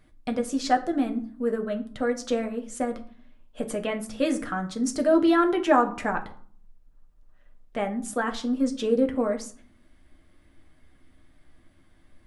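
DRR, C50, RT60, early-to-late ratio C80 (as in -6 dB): 4.0 dB, 14.0 dB, 0.50 s, 19.0 dB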